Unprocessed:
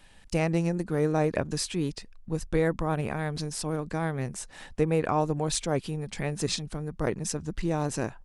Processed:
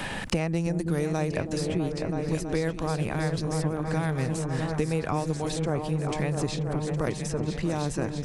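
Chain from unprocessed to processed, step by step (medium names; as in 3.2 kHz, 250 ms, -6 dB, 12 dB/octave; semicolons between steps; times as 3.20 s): peaking EQ 100 Hz +4.5 dB 1.1 oct; delay with an opening low-pass 326 ms, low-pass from 400 Hz, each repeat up 2 oct, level -6 dB; three bands compressed up and down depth 100%; trim -2.5 dB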